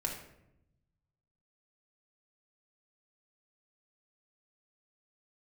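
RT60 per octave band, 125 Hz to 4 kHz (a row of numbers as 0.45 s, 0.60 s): 1.8 s, 1.3 s, 0.90 s, 0.75 s, 0.70 s, 0.50 s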